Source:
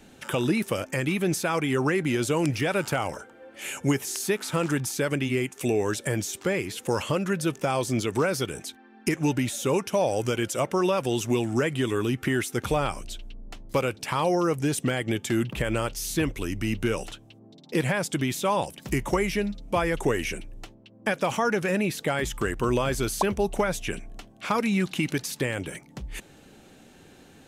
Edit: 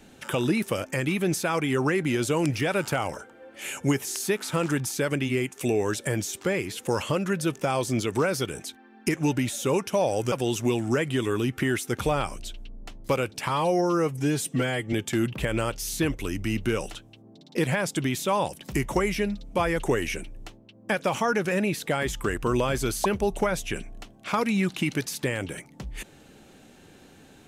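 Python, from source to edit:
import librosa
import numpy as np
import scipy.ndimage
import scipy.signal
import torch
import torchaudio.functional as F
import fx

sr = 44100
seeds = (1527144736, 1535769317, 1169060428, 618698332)

y = fx.edit(x, sr, fx.cut(start_s=10.32, length_s=0.65),
    fx.stretch_span(start_s=14.14, length_s=0.96, factor=1.5), tone=tone)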